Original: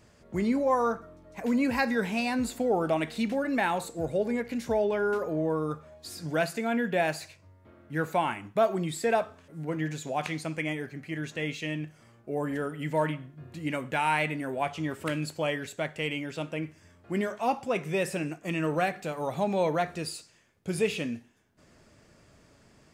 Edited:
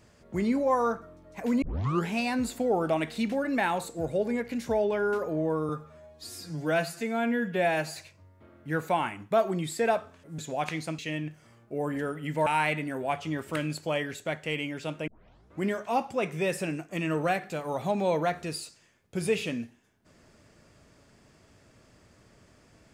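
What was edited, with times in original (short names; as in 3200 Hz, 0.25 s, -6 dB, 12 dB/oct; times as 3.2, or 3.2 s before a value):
1.62 tape start 0.46 s
5.69–7.2 stretch 1.5×
9.63–9.96 cut
10.56–11.55 cut
13.03–13.99 cut
16.6 tape start 0.54 s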